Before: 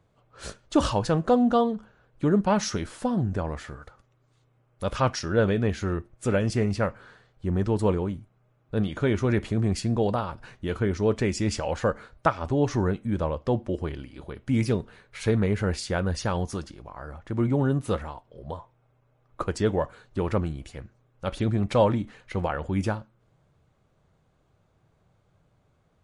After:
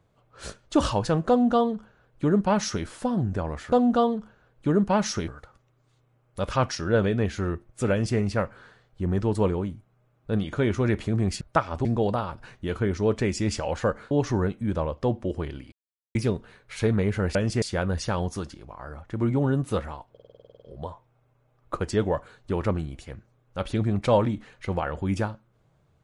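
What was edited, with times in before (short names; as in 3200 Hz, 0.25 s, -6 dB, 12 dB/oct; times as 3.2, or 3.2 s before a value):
1.29–2.85 copy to 3.72
6.35–6.62 copy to 15.79
12.11–12.55 move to 9.85
14.16–14.59 mute
18.29 stutter 0.05 s, 11 plays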